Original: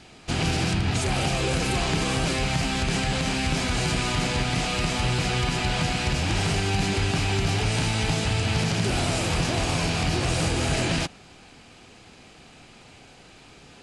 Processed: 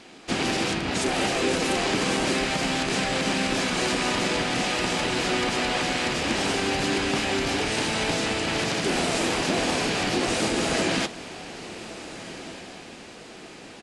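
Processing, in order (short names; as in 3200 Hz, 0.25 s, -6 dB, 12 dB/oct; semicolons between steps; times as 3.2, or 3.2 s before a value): resonant low shelf 190 Hz -13.5 dB, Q 1.5; harmoniser -7 st -7 dB, -5 st -6 dB; on a send: diffused feedback echo 1.547 s, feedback 45%, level -14.5 dB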